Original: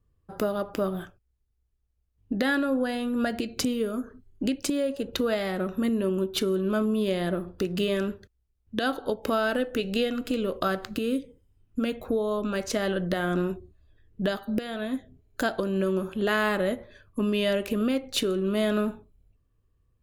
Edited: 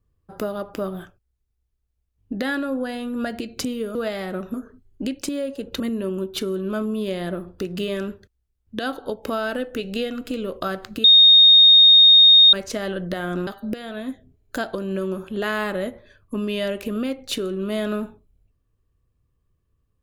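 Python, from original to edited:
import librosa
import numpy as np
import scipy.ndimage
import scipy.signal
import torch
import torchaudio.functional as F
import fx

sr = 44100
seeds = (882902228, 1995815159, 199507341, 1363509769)

y = fx.edit(x, sr, fx.move(start_s=5.21, length_s=0.59, to_s=3.95),
    fx.bleep(start_s=11.04, length_s=1.49, hz=3700.0, db=-7.5),
    fx.cut(start_s=13.47, length_s=0.85), tone=tone)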